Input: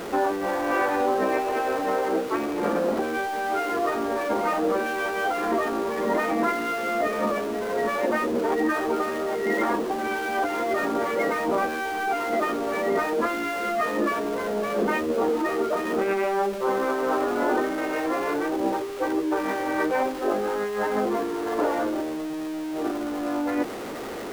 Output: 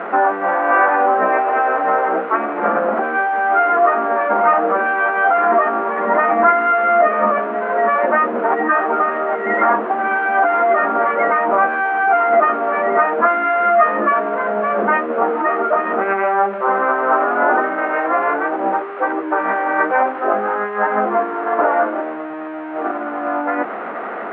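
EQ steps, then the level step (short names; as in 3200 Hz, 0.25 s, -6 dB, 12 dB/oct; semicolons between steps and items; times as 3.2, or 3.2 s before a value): air absorption 65 m; speaker cabinet 200–2500 Hz, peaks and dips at 210 Hz +7 dB, 680 Hz +8 dB, 1400 Hz +3 dB; bell 1300 Hz +14 dB 2.1 oct; -2.0 dB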